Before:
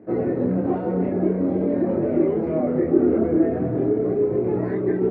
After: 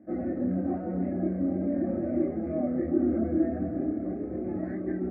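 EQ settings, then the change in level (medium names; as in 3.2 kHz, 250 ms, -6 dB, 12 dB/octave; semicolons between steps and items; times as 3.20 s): peaking EQ 78 Hz +11.5 dB 2.3 oct; static phaser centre 650 Hz, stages 8; band-stop 1.4 kHz, Q 12; -7.5 dB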